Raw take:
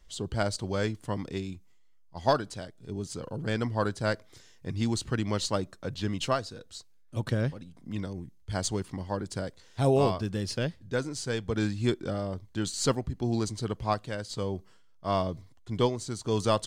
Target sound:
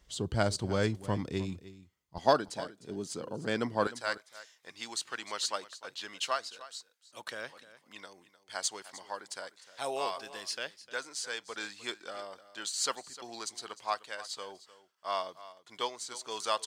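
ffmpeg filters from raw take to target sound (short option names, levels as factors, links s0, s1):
-af "asetnsamples=n=441:p=0,asendcmd='2.18 highpass f 220;3.87 highpass f 930',highpass=46,aecho=1:1:304:0.15"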